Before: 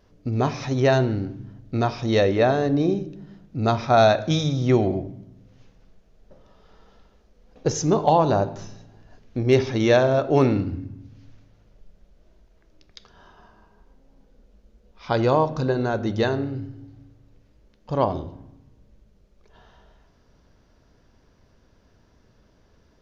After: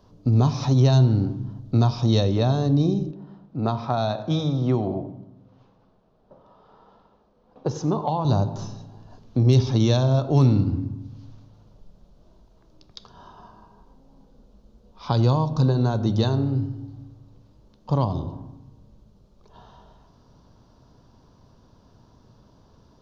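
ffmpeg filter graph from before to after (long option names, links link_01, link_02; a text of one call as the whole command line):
ffmpeg -i in.wav -filter_complex "[0:a]asettb=1/sr,asplit=3[link_01][link_02][link_03];[link_01]atrim=end=3.114[link_04];[link_02]atrim=start=3.11:end=8.25,asetpts=PTS-STARTPTS,afade=type=in:duration=0.004:curve=qsin,afade=type=out:start_time=5.136:duration=0.004:curve=qsin,lowpass=1900,aemphasis=mode=production:type=bsi,aecho=1:1:92:0.133,atrim=end_sample=226674[link_05];[link_03]atrim=start=8.246[link_06];[link_04][link_05]acrossfade=duration=0.004:curve1=hsin:curve2=qsin[link_07];[link_07][link_06]acrossfade=duration=0.004:curve1=qsin:curve2=hsin,equalizer=frequency=125:width_type=o:width=1:gain=8,equalizer=frequency=250:width_type=o:width=1:gain=4,equalizer=frequency=1000:width_type=o:width=1:gain=10,equalizer=frequency=2000:width_type=o:width=1:gain=-11,equalizer=frequency=4000:width_type=o:width=1:gain=6,acrossover=split=200|3000[link_08][link_09][link_10];[link_09]acompressor=threshold=-24dB:ratio=6[link_11];[link_08][link_11][link_10]amix=inputs=3:normalize=0" out.wav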